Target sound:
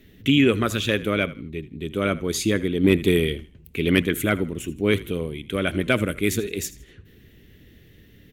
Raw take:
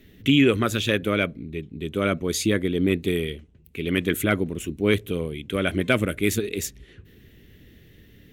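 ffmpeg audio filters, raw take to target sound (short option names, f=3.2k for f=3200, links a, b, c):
-filter_complex "[0:a]asplit=4[a][b][c][d];[b]adelay=80,afreqshift=-40,volume=-18dB[e];[c]adelay=160,afreqshift=-80,volume=-28.2dB[f];[d]adelay=240,afreqshift=-120,volume=-38.3dB[g];[a][e][f][g]amix=inputs=4:normalize=0,asplit=3[h][i][j];[h]afade=t=out:st=2.83:d=0.02[k];[i]acontrast=34,afade=t=in:st=2.83:d=0.02,afade=t=out:st=4.02:d=0.02[l];[j]afade=t=in:st=4.02:d=0.02[m];[k][l][m]amix=inputs=3:normalize=0"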